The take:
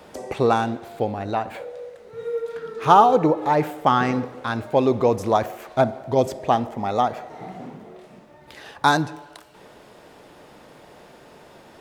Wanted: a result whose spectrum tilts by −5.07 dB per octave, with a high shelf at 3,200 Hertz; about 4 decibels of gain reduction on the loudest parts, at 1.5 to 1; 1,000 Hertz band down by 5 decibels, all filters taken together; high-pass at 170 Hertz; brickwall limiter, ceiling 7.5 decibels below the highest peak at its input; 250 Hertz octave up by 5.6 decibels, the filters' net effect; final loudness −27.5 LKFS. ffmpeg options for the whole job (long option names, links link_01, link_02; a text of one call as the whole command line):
ffmpeg -i in.wav -af "highpass=170,equalizer=frequency=250:width_type=o:gain=8,equalizer=frequency=1000:width_type=o:gain=-8,highshelf=frequency=3200:gain=4.5,acompressor=threshold=-22dB:ratio=1.5,volume=-0.5dB,alimiter=limit=-14dB:level=0:latency=1" out.wav